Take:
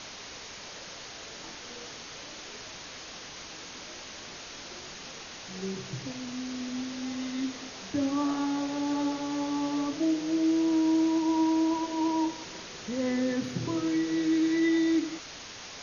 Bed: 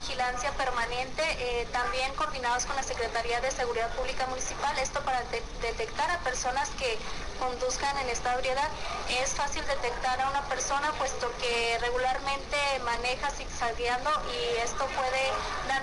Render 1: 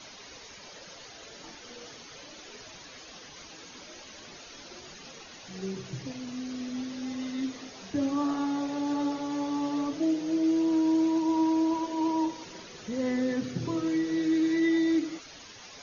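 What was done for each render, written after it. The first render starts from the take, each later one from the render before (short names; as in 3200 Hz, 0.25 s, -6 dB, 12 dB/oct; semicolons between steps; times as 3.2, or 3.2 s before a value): denoiser 10 dB, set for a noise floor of -44 dBFS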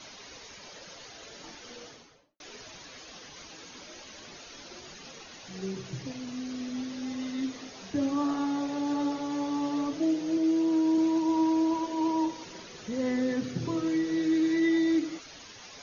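1.75–2.4 studio fade out; 10.37–10.98 Chebyshev high-pass 170 Hz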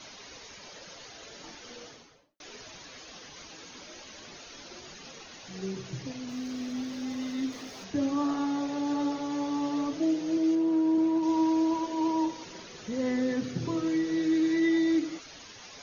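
6.29–7.84 zero-crossing step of -50.5 dBFS; 10.55–11.23 high shelf 2900 Hz -10.5 dB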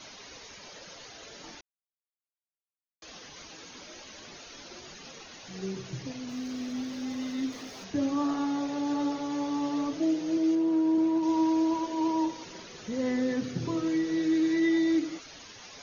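1.61–3.02 mute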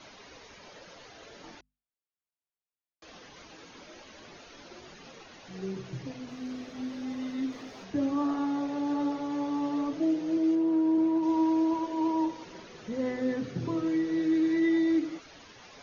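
LPF 2300 Hz 6 dB/oct; notches 50/100/150/200/250 Hz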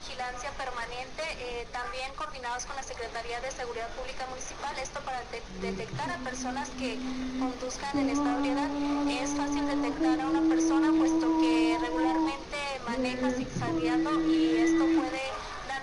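add bed -6 dB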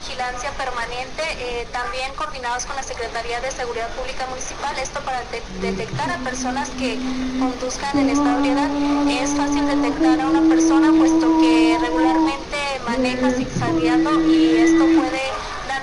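gain +10.5 dB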